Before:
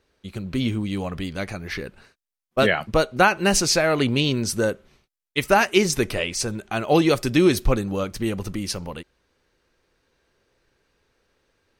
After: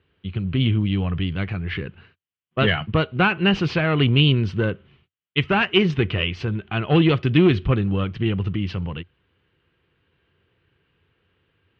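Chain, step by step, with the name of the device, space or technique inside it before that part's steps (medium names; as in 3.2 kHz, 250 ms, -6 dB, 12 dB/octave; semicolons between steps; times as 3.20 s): guitar amplifier (valve stage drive 10 dB, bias 0.35; tone controls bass +7 dB, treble -8 dB; cabinet simulation 88–3500 Hz, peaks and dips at 89 Hz +7 dB, 150 Hz +3 dB, 240 Hz -5 dB, 580 Hz -8 dB, 830 Hz -4 dB, 3 kHz +10 dB); trim +1.5 dB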